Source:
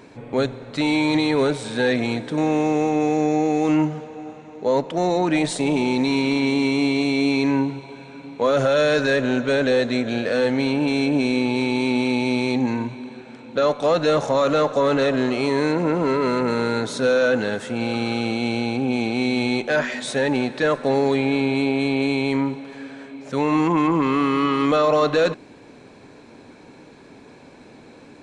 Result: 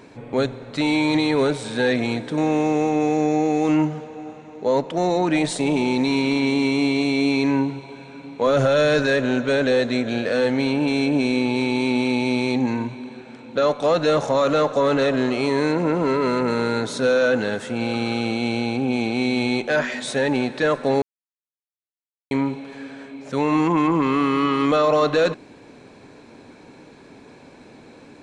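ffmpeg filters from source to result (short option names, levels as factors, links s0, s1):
-filter_complex "[0:a]asettb=1/sr,asplit=3[s0][s1][s2];[s0]atrim=end=8.464[s3];[s1]atrim=start=8.46:end=9.03,asetpts=PTS-STARTPTS,afade=t=in:d=0.004:c=qsin,afade=t=out:st=0.566:d=0.004:c=qsin,lowshelf=f=120:g=9.5[s4];[s2]atrim=start=9.026[s5];[s3][s4]acrossfade=d=0.004:c1=hsin:c2=qsin[s6];[s6][s5]acrossfade=d=0.004:c1=qsin:c2=hsin,asplit=3[s7][s8][s9];[s7]atrim=end=21.02,asetpts=PTS-STARTPTS,afade=t=out:st=21.016:d=0.004:c=hsin[s10];[s8]atrim=start=21.02:end=22.31,asetpts=PTS-STARTPTS,volume=0[s11];[s9]atrim=start=22.31,asetpts=PTS-STARTPTS,afade=t=in:d=0.004:c=hsin[s12];[s10][s11][s12]concat=n=3:v=0:a=1"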